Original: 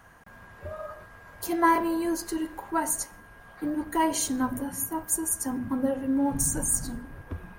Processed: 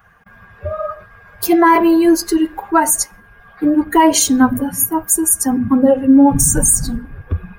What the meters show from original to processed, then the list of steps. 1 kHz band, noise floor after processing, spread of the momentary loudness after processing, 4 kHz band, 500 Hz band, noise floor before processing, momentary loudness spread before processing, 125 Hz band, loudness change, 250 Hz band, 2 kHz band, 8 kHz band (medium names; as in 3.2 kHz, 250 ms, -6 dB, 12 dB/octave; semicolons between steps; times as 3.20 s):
+12.0 dB, -46 dBFS, 15 LU, +15.0 dB, +15.0 dB, -50 dBFS, 16 LU, +14.5 dB, +14.0 dB, +15.5 dB, +11.5 dB, +13.5 dB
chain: expander on every frequency bin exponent 1.5; loudness maximiser +19.5 dB; trim -1 dB